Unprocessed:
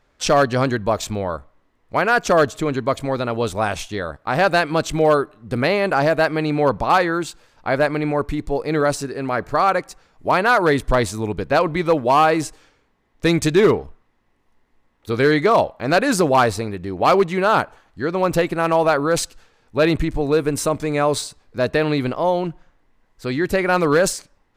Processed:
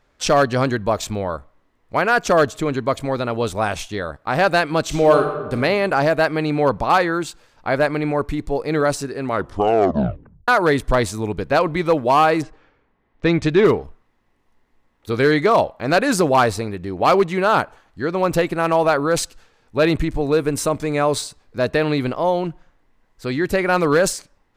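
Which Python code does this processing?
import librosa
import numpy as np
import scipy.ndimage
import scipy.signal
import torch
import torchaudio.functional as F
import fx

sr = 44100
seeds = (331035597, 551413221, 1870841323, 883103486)

y = fx.reverb_throw(x, sr, start_s=4.83, length_s=0.7, rt60_s=1.2, drr_db=4.0)
y = fx.lowpass(y, sr, hz=fx.line((12.41, 1800.0), (13.64, 4100.0)), slope=12, at=(12.41, 13.64), fade=0.02)
y = fx.edit(y, sr, fx.tape_stop(start_s=9.23, length_s=1.25), tone=tone)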